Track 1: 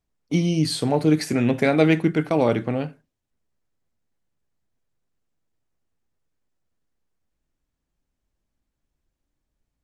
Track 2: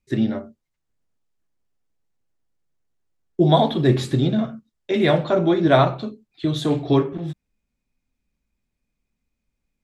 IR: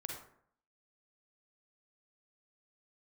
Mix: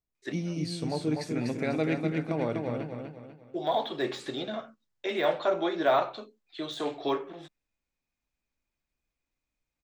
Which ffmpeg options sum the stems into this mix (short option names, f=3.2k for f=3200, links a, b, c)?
-filter_complex "[0:a]bandreject=f=3.1k:w=10,volume=-11.5dB,asplit=3[a][b][c];[b]volume=-4.5dB[d];[1:a]deesser=0.85,highpass=550,adelay=150,volume=-3.5dB[e];[c]apad=whole_len=440251[f];[e][f]sidechaincompress=threshold=-43dB:ratio=8:attack=41:release=1210[g];[d]aecho=0:1:246|492|738|984|1230|1476:1|0.4|0.16|0.064|0.0256|0.0102[h];[a][g][h]amix=inputs=3:normalize=0,equalizer=f=11k:w=2.1:g=-9.5"